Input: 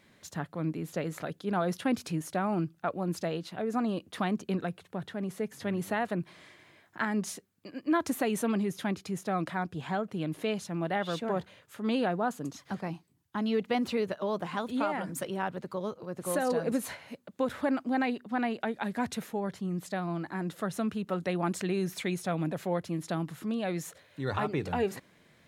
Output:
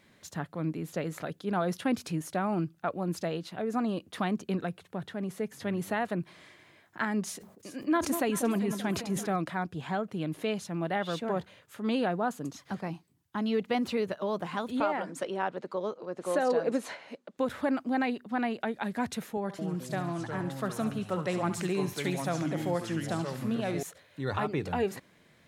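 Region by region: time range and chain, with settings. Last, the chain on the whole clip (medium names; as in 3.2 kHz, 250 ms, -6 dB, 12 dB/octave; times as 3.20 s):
7.24–9.36 s: echo whose repeats swap between lows and highs 193 ms, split 1 kHz, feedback 65%, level -10 dB + decay stretcher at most 91 dB/s
14.80–17.38 s: band-pass 390–6900 Hz + bass shelf 500 Hz +8.5 dB
19.37–23.83 s: high-pass 140 Hz + ever faster or slower copies 215 ms, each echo -4 st, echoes 2, each echo -6 dB + thinning echo 69 ms, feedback 56%, high-pass 760 Hz, level -10 dB
whole clip: none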